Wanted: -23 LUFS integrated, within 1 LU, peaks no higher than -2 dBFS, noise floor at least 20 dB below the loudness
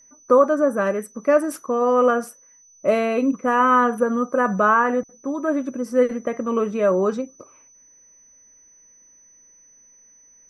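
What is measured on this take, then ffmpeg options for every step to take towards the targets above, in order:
steady tone 6000 Hz; tone level -50 dBFS; loudness -20.5 LUFS; peak -4.5 dBFS; loudness target -23.0 LUFS
-> -af "bandreject=f=6k:w=30"
-af "volume=-2.5dB"

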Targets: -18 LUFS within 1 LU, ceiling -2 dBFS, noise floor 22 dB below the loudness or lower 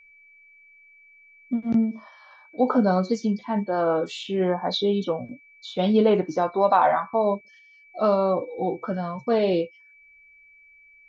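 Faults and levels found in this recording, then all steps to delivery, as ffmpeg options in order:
steady tone 2300 Hz; tone level -51 dBFS; loudness -24.0 LUFS; peak -7.0 dBFS; loudness target -18.0 LUFS
-> -af "bandreject=f=2.3k:w=30"
-af "volume=6dB,alimiter=limit=-2dB:level=0:latency=1"

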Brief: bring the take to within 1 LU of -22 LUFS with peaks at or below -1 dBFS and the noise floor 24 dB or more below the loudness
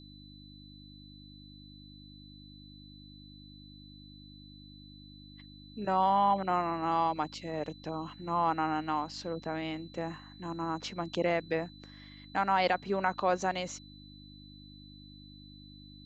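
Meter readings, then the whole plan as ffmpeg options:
hum 50 Hz; harmonics up to 300 Hz; hum level -50 dBFS; steady tone 4000 Hz; tone level -55 dBFS; loudness -32.0 LUFS; peak -14.5 dBFS; loudness target -22.0 LUFS
-> -af "bandreject=f=50:t=h:w=4,bandreject=f=100:t=h:w=4,bandreject=f=150:t=h:w=4,bandreject=f=200:t=h:w=4,bandreject=f=250:t=h:w=4,bandreject=f=300:t=h:w=4"
-af "bandreject=f=4k:w=30"
-af "volume=10dB"

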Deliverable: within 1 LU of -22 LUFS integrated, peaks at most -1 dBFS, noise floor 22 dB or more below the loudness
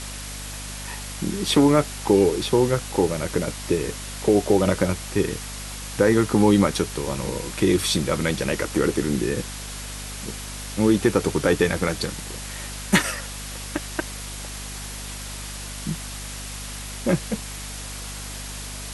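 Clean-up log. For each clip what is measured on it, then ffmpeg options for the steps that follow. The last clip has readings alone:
hum 50 Hz; harmonics up to 250 Hz; hum level -35 dBFS; noise floor -34 dBFS; noise floor target -46 dBFS; loudness -24.0 LUFS; peak -3.0 dBFS; loudness target -22.0 LUFS
-> -af "bandreject=f=50:t=h:w=6,bandreject=f=100:t=h:w=6,bandreject=f=150:t=h:w=6,bandreject=f=200:t=h:w=6,bandreject=f=250:t=h:w=6"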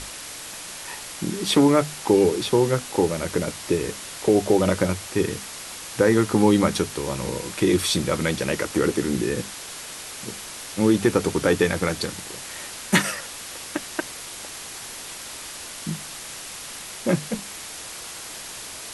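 hum none; noise floor -37 dBFS; noise floor target -47 dBFS
-> -af "afftdn=nr=10:nf=-37"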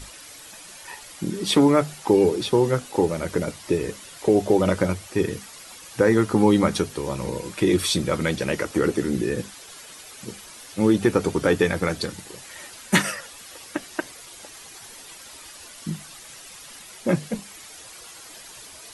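noise floor -44 dBFS; noise floor target -45 dBFS
-> -af "afftdn=nr=6:nf=-44"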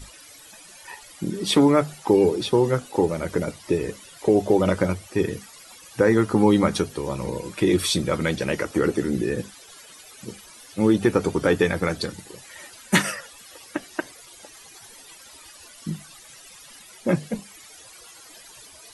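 noise floor -47 dBFS; loudness -23.0 LUFS; peak -3.5 dBFS; loudness target -22.0 LUFS
-> -af "volume=1dB"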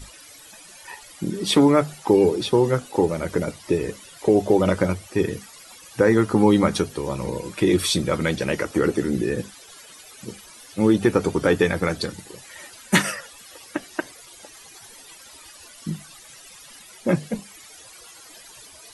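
loudness -22.0 LUFS; peak -2.5 dBFS; noise floor -46 dBFS

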